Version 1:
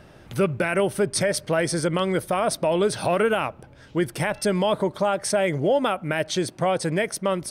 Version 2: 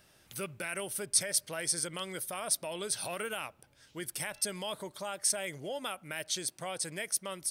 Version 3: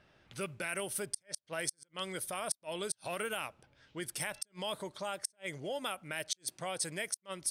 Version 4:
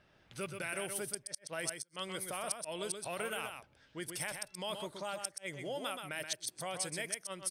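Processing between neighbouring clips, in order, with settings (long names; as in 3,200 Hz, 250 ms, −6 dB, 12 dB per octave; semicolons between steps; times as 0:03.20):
first-order pre-emphasis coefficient 0.9
gate with flip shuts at −19 dBFS, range −40 dB; low-pass that shuts in the quiet parts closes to 2,700 Hz, open at −33.5 dBFS
single-tap delay 126 ms −6.5 dB; level −2 dB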